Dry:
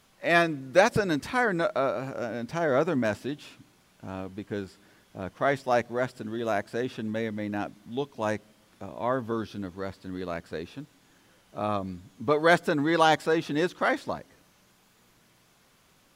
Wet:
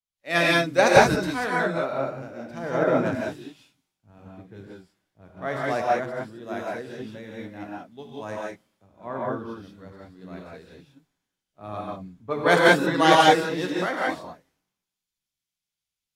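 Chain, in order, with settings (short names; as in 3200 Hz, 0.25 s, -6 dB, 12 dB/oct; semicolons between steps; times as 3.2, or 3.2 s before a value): non-linear reverb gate 0.21 s rising, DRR -3.5 dB; three-band expander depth 100%; gain -4.5 dB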